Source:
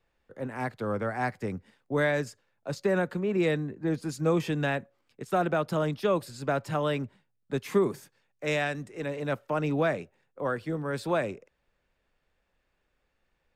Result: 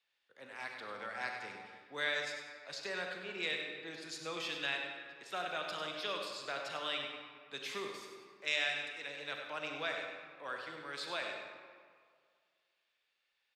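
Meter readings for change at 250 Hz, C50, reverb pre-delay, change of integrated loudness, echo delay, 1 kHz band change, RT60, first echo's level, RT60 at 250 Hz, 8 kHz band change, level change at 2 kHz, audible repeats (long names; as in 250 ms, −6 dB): −21.0 dB, 2.0 dB, 34 ms, −9.5 dB, 98 ms, −10.0 dB, 2.0 s, −8.0 dB, 1.8 s, −4.0 dB, −3.5 dB, 2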